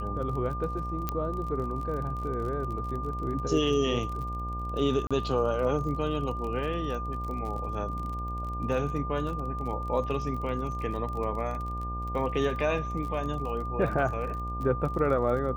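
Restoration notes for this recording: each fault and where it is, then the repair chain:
buzz 60 Hz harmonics 16 -35 dBFS
crackle 35 per s -36 dBFS
whine 1.2 kHz -35 dBFS
1.09 s: pop -15 dBFS
5.07–5.11 s: dropout 36 ms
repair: de-click; de-hum 60 Hz, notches 16; band-stop 1.2 kHz, Q 30; interpolate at 5.07 s, 36 ms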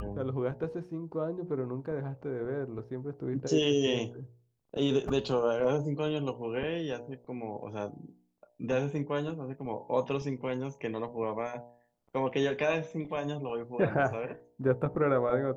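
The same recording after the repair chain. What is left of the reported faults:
nothing left

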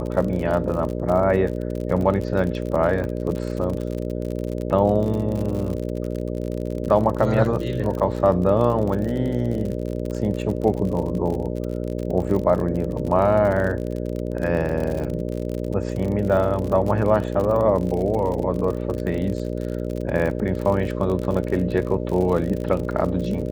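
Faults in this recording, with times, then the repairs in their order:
buzz 60 Hz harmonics 10 -27 dBFS
crackle 56 per s -27 dBFS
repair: de-click; de-hum 60 Hz, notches 10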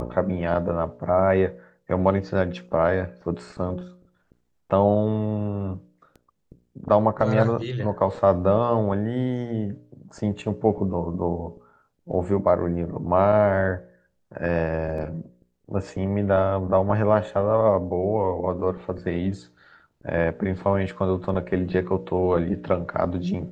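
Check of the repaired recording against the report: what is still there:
nothing left

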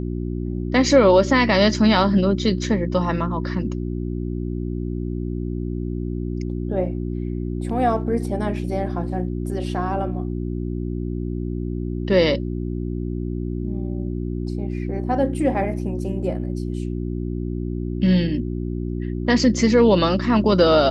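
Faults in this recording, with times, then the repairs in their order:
hum 60 Hz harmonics 6 -26 dBFS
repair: de-hum 60 Hz, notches 6

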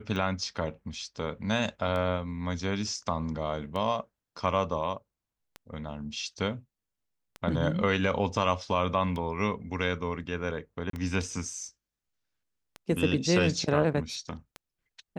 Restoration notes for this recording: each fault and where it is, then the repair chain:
tick 33 1/3 rpm -23 dBFS
10.90–10.93 s: dropout 33 ms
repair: de-click; interpolate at 10.90 s, 33 ms

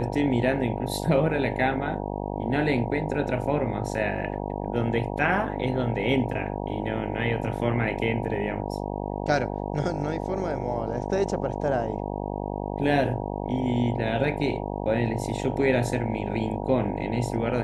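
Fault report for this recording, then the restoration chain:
buzz 50 Hz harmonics 19 -31 dBFS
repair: de-hum 50 Hz, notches 19

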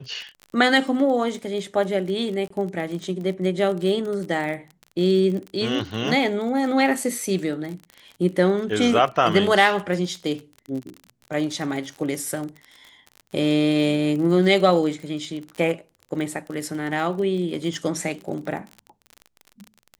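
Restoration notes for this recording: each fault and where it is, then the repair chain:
crackle 36 per s -30 dBFS
2.48–2.50 s: dropout 24 ms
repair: de-click; interpolate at 2.48 s, 24 ms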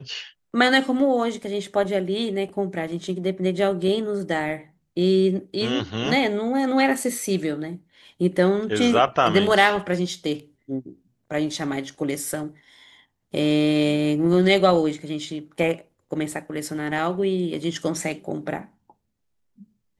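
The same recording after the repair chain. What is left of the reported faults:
nothing left

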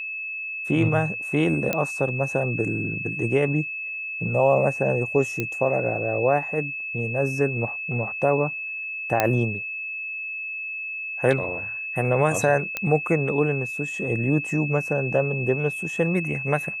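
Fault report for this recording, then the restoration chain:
whine 2.6 kHz -29 dBFS
1.73 s: pop -9 dBFS
5.40 s: pop -12 dBFS
9.20 s: pop -5 dBFS
12.77 s: pop -11 dBFS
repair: de-click; band-stop 2.6 kHz, Q 30

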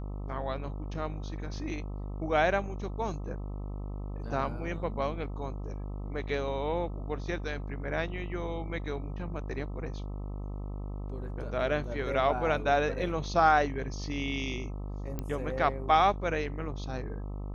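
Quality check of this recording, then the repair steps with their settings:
buzz 50 Hz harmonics 26 -37 dBFS
15.19 s: pop -21 dBFS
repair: de-click; de-hum 50 Hz, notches 26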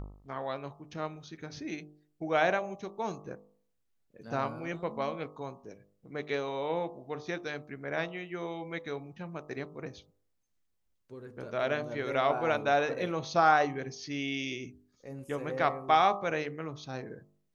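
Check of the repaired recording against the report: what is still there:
nothing left

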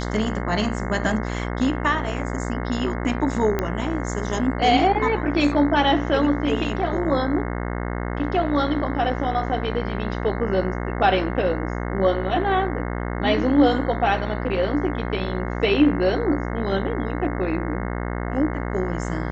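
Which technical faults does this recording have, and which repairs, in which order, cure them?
buzz 60 Hz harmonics 36 -27 dBFS
3.59 s: pop -10 dBFS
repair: de-click; de-hum 60 Hz, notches 36

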